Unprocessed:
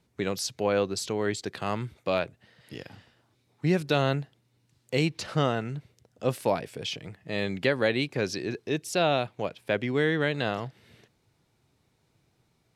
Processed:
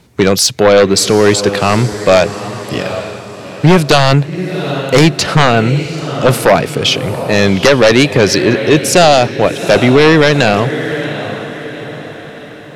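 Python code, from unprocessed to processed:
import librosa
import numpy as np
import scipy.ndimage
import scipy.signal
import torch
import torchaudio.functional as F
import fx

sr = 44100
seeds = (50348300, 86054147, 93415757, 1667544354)

y = fx.echo_diffused(x, sr, ms=778, feedback_pct=46, wet_db=-14)
y = fx.fold_sine(y, sr, drive_db=10, ceiling_db=-9.5)
y = y * librosa.db_to_amplitude(8.0)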